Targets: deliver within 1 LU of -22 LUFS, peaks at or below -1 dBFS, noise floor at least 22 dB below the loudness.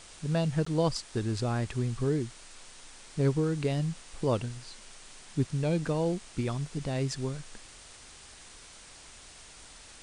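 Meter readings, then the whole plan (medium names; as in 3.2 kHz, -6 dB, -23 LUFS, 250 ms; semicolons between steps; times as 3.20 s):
dropouts 1; longest dropout 14 ms; noise floor -51 dBFS; noise floor target -53 dBFS; loudness -31.0 LUFS; peak level -15.5 dBFS; loudness target -22.0 LUFS
-> interpolate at 0.65 s, 14 ms; noise reduction 6 dB, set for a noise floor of -51 dBFS; trim +9 dB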